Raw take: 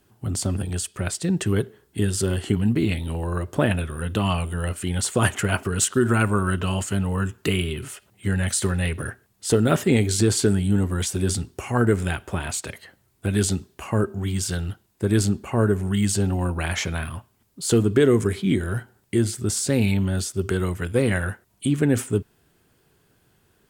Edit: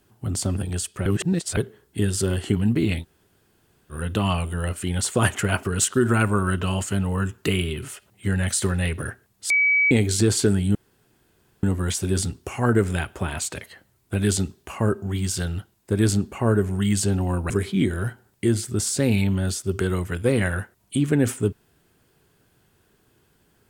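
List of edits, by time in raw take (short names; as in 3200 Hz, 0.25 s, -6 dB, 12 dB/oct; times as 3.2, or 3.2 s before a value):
1.06–1.57 reverse
3.02–3.92 room tone, crossfade 0.06 s
9.5–9.91 bleep 2280 Hz -15.5 dBFS
10.75 insert room tone 0.88 s
16.62–18.2 cut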